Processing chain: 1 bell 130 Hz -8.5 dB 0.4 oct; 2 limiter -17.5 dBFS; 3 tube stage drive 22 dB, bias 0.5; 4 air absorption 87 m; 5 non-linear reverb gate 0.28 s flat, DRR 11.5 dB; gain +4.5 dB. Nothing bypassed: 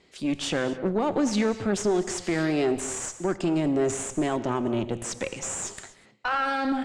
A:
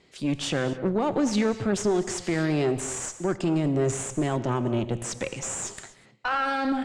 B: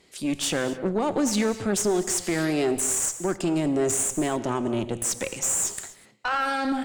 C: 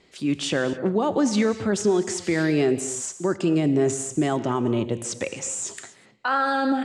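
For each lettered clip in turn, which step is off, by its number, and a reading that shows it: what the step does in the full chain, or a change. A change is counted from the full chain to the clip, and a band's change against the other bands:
1, 125 Hz band +5.0 dB; 4, 8 kHz band +8.0 dB; 3, 125 Hz band +2.0 dB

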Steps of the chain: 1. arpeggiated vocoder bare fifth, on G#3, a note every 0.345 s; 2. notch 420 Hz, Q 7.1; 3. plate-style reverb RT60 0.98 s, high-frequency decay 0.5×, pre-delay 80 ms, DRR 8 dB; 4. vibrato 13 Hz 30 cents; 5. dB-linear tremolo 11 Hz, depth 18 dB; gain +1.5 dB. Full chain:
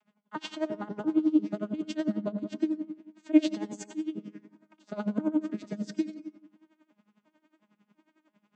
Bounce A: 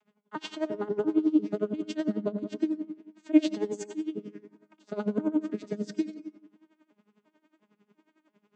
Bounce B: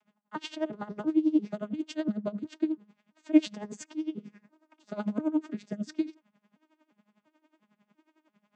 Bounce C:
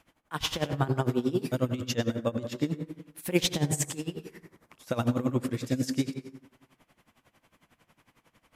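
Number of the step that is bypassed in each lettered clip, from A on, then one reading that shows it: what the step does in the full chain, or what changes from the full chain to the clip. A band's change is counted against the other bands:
2, 500 Hz band +4.0 dB; 3, momentary loudness spread change -2 LU; 1, 250 Hz band -10.0 dB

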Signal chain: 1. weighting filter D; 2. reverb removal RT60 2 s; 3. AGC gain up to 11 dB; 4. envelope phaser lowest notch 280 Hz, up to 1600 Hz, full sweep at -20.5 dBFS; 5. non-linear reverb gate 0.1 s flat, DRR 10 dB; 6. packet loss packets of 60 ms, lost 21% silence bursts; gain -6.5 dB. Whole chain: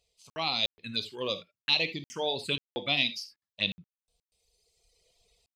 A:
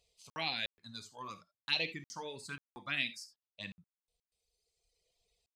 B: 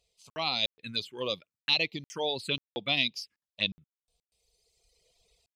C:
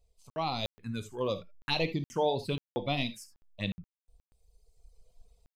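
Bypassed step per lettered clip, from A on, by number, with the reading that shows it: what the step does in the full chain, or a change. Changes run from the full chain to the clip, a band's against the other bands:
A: 3, crest factor change +1.5 dB; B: 5, momentary loudness spread change -2 LU; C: 1, 4 kHz band -12.0 dB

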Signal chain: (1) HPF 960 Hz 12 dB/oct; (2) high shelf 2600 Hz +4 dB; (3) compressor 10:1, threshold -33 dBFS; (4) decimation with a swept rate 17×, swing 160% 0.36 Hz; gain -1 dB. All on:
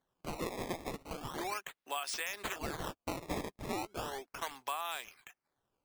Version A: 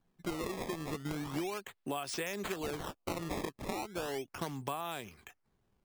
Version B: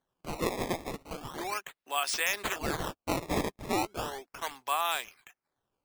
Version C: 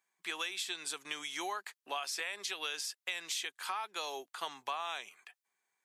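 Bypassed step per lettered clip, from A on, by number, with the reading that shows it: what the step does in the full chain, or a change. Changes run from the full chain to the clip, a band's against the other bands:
1, 250 Hz band +6.0 dB; 3, mean gain reduction 4.5 dB; 4, crest factor change +3.5 dB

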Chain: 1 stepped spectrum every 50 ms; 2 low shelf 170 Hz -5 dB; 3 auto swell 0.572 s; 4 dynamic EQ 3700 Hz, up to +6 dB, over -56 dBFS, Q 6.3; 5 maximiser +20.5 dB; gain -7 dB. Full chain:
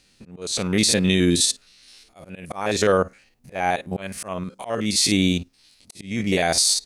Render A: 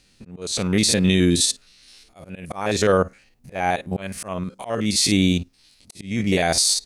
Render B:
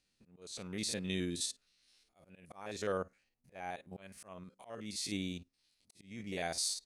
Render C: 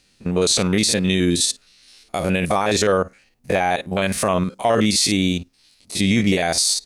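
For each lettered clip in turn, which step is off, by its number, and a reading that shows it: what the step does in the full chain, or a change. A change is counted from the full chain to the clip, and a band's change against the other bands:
2, 125 Hz band +2.5 dB; 5, crest factor change +4.5 dB; 3, crest factor change -3.0 dB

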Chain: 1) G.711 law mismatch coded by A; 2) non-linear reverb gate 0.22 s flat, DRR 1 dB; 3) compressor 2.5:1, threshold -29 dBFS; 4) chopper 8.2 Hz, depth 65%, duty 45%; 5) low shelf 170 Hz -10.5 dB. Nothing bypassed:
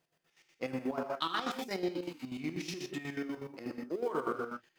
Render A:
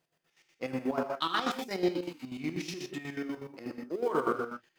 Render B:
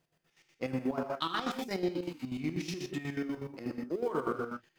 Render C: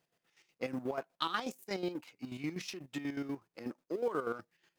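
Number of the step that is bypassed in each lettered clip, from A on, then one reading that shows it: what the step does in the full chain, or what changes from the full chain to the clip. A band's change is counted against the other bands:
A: 3, loudness change +3.5 LU; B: 5, 125 Hz band +5.5 dB; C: 2, momentary loudness spread change +2 LU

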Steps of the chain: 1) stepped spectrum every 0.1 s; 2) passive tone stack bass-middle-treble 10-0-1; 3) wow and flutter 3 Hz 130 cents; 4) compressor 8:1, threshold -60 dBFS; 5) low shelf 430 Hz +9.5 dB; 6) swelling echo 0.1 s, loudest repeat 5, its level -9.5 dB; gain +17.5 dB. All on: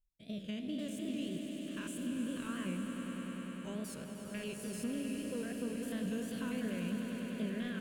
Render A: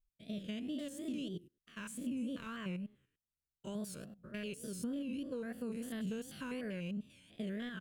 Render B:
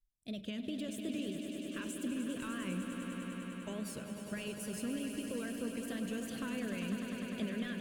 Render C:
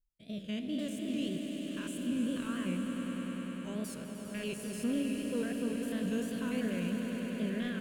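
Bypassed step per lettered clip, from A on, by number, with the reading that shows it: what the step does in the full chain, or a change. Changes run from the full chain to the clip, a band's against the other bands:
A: 6, echo-to-direct 0.0 dB to none; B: 1, 125 Hz band -2.0 dB; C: 4, mean gain reduction 2.5 dB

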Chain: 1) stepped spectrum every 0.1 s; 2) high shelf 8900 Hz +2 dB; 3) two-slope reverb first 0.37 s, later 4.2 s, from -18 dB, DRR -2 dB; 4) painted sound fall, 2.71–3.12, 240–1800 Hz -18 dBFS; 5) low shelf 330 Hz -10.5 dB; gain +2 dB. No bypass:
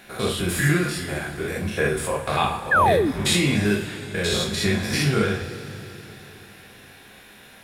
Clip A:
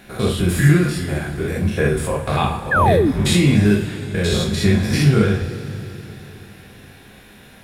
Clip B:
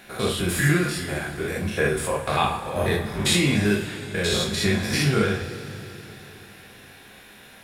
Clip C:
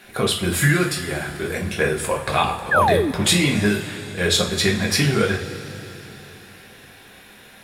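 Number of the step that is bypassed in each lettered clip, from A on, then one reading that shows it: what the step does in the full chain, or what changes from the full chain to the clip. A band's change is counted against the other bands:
5, 125 Hz band +8.0 dB; 4, 1 kHz band -4.0 dB; 1, 8 kHz band +2.5 dB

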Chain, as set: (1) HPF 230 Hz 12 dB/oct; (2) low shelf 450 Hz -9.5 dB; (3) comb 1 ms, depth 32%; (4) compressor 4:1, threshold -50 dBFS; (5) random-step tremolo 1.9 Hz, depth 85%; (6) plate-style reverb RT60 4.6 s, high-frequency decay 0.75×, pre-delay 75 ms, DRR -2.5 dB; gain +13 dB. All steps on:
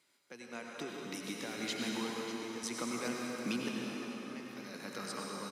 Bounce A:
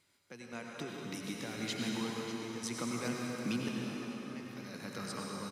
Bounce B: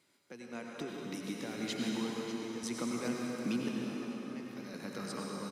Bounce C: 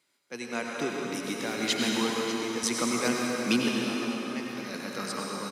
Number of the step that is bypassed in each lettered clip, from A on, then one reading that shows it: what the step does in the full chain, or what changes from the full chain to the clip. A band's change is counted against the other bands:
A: 1, 125 Hz band +7.5 dB; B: 2, 125 Hz band +6.5 dB; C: 4, mean gain reduction 9.0 dB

